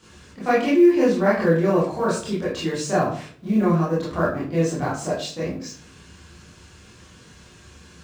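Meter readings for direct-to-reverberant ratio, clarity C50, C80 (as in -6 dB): -9.5 dB, 3.5 dB, 9.5 dB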